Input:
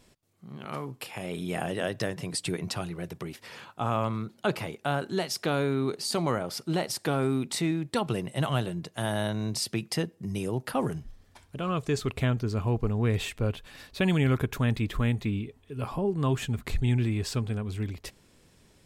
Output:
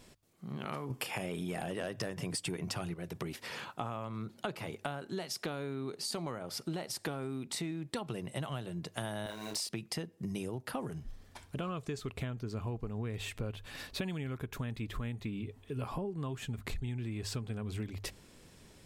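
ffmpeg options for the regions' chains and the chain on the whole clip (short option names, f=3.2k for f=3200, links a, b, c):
-filter_complex "[0:a]asettb=1/sr,asplit=3[a][b][c];[a]atrim=end=0.904[d];[b]atrim=start=0.9:end=2.94,asetpts=PTS-STARTPTS,afade=t=in:d=0.004:c=qsin,afade=t=out:st=2.036:d=0.004:c=qsin,bandreject=f=4k:w=8.2,aeval=exprs='0.2*sin(PI/2*1.78*val(0)/0.2)':c=same[e];[c]atrim=start=2.936[f];[d][e]acrossfade=d=0.004:c1=hsin:c2=qsin[g];[g][f]acrossfade=d=0.004:c1=qsin:c2=hsin,asettb=1/sr,asplit=3[h][i][j];[h]atrim=end=9.264[k];[i]atrim=start=9.26:end=9.69,asetpts=PTS-STARTPTS,afade=t=in:d=0.004:c=qsin,afade=t=out:st=0.426:d=0.004:c=qsin,highpass=480,acrusher=bits=7:mix=0:aa=0.5,asplit=2[l][m];[m]adelay=29,volume=-3dB[n];[l][n]amix=inputs=2:normalize=0,atrim=end_sample=18963[o];[j]atrim=start=9.686[p];[k][o]acrossfade=d=0.004:c1=hsin:c2=qsin[q];[q][p]acrossfade=d=0.004:c1=qsin:c2=hsin,bandreject=f=50:t=h:w=6,bandreject=f=100:t=h:w=6,acompressor=threshold=-37dB:ratio=12,volume=2.5dB"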